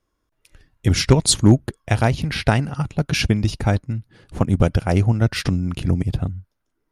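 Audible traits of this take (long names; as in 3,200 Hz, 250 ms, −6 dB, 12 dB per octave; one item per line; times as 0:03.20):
background noise floor −74 dBFS
spectral slope −5.5 dB per octave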